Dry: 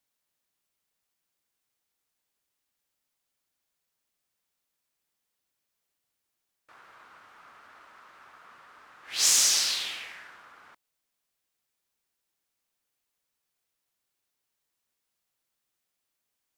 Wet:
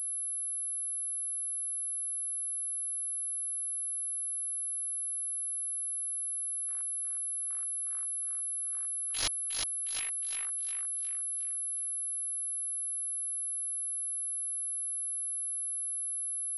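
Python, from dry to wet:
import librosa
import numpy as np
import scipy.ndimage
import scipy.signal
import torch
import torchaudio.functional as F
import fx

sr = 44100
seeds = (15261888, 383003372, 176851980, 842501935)

y = fx.noise_reduce_blind(x, sr, reduce_db=13)
y = fx.rider(y, sr, range_db=10, speed_s=0.5)
y = fx.step_gate(y, sr, bpm=110, pattern='.x..x....', floor_db=-60.0, edge_ms=4.5)
y = fx.echo_thinned(y, sr, ms=360, feedback_pct=47, hz=200.0, wet_db=-4.5)
y = (np.kron(y[::4], np.eye(4)[0]) * 4)[:len(y)]
y = fx.pwm(y, sr, carrier_hz=11000.0)
y = y * librosa.db_to_amplitude(-6.5)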